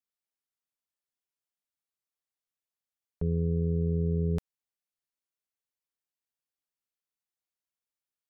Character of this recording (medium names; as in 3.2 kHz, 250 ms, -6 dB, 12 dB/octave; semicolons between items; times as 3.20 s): noise floor -94 dBFS; spectral tilt -6.0 dB/octave